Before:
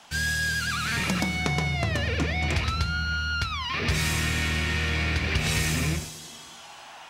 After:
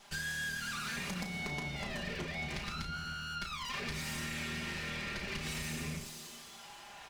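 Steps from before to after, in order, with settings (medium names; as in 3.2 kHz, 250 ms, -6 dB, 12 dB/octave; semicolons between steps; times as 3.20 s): comb filter that takes the minimum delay 5 ms; compression, threshold -31 dBFS, peak gain reduction 9 dB; doubling 34 ms -8 dB; trim -5.5 dB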